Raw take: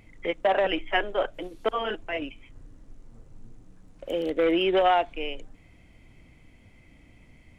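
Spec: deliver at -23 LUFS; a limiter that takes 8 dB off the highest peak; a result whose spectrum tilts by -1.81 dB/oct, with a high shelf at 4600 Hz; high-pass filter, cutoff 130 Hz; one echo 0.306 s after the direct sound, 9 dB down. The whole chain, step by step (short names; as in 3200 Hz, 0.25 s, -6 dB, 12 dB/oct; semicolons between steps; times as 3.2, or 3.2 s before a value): HPF 130 Hz; high shelf 4600 Hz -4.5 dB; limiter -19 dBFS; echo 0.306 s -9 dB; gain +6.5 dB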